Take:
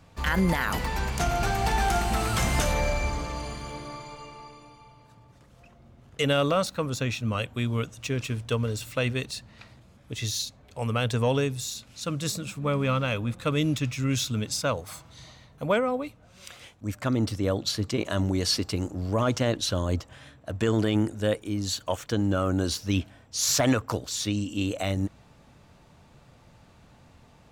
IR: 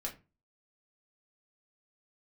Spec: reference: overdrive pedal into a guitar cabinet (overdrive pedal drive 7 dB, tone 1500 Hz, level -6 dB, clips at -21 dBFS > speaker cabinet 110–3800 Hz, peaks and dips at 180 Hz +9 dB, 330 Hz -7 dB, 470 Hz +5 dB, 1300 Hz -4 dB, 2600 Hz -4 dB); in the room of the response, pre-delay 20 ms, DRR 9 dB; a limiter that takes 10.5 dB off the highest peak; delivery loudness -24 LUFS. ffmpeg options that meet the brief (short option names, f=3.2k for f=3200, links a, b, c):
-filter_complex "[0:a]alimiter=level_in=0.5dB:limit=-24dB:level=0:latency=1,volume=-0.5dB,asplit=2[a][b];[1:a]atrim=start_sample=2205,adelay=20[c];[b][c]afir=irnorm=-1:irlink=0,volume=-9dB[d];[a][d]amix=inputs=2:normalize=0,asplit=2[e][f];[f]highpass=f=720:p=1,volume=7dB,asoftclip=type=tanh:threshold=-21dB[g];[e][g]amix=inputs=2:normalize=0,lowpass=f=1.5k:p=1,volume=-6dB,highpass=110,equalizer=f=180:t=q:w=4:g=9,equalizer=f=330:t=q:w=4:g=-7,equalizer=f=470:t=q:w=4:g=5,equalizer=f=1.3k:t=q:w=4:g=-4,equalizer=f=2.6k:t=q:w=4:g=-4,lowpass=f=3.8k:w=0.5412,lowpass=f=3.8k:w=1.3066,volume=12.5dB"